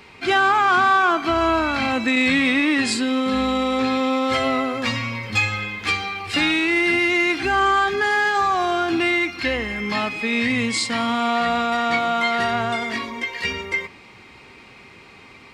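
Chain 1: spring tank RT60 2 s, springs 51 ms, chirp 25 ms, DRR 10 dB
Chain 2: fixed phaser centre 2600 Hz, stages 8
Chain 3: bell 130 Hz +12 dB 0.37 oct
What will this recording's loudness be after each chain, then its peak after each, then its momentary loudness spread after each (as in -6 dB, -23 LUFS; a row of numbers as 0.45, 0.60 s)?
-19.5, -23.0, -20.0 LUFS; -7.0, -9.5, -7.0 dBFS; 7, 8, 7 LU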